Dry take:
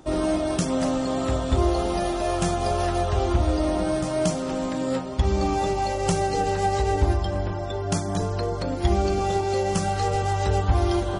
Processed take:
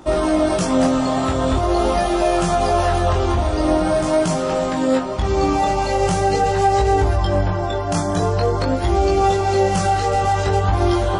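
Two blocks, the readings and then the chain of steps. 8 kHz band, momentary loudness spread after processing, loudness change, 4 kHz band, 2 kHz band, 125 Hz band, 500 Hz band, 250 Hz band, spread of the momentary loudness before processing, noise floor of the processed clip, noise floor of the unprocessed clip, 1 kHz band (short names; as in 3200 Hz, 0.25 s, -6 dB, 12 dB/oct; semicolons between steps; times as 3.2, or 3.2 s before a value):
+4.0 dB, 3 LU, +6.0 dB, +5.0 dB, +7.0 dB, +4.0 dB, +7.0 dB, +5.5 dB, 4 LU, -21 dBFS, -29 dBFS, +7.5 dB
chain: bell 1100 Hz +4 dB 2.1 oct; limiter -15 dBFS, peak gain reduction 7.5 dB; chorus 0.44 Hz, delay 17.5 ms, depth 6.5 ms; gain +9 dB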